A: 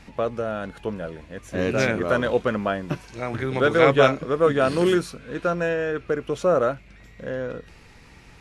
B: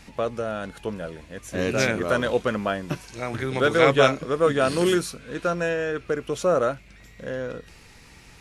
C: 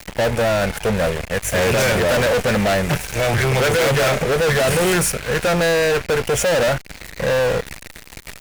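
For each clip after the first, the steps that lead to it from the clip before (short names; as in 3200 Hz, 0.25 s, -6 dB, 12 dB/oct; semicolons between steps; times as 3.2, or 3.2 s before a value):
high shelf 4300 Hz +10 dB; gain -1.5 dB
fixed phaser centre 1100 Hz, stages 6; fuzz box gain 38 dB, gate -45 dBFS; power-law curve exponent 0.5; gain -3.5 dB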